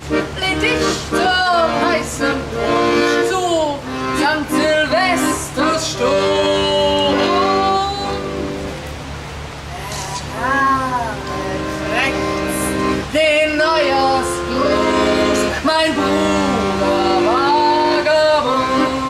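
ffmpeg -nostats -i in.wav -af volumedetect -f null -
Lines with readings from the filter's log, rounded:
mean_volume: -16.4 dB
max_volume: -3.8 dB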